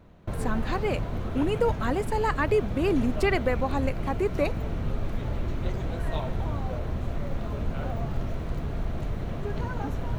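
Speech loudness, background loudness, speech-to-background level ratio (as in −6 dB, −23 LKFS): −28.5 LKFS, −32.5 LKFS, 4.0 dB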